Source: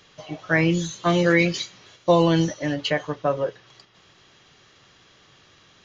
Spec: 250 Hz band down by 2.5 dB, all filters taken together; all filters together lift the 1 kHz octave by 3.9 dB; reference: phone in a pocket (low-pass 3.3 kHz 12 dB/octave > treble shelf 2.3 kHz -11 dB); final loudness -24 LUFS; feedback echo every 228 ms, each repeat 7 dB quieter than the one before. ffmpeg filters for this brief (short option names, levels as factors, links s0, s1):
-af "lowpass=3300,equalizer=f=250:t=o:g=-5,equalizer=f=1000:t=o:g=7.5,highshelf=f=2300:g=-11,aecho=1:1:228|456|684|912|1140:0.447|0.201|0.0905|0.0407|0.0183,volume=0.841"